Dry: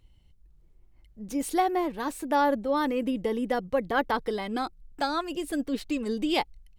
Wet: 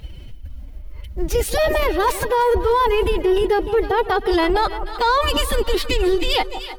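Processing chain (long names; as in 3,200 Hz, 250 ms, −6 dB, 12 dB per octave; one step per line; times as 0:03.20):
fade-out on the ending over 0.79 s
parametric band 8,000 Hz −7.5 dB 0.69 octaves
reversed playback
downward compressor 6 to 1, threshold −36 dBFS, peak gain reduction 16 dB
reversed playback
phase-vocoder pitch shift with formants kept +9 semitones
on a send: echo with a time of its own for lows and highs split 1,100 Hz, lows 163 ms, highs 303 ms, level −15 dB
on the sum: boost into a limiter +33.5 dB
level −9 dB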